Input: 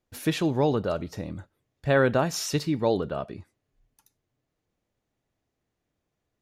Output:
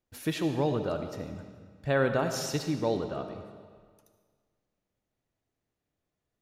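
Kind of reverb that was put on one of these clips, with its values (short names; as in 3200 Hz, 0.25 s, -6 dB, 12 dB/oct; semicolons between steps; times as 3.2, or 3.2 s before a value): digital reverb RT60 1.7 s, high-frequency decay 0.9×, pre-delay 35 ms, DRR 7 dB; gain -5 dB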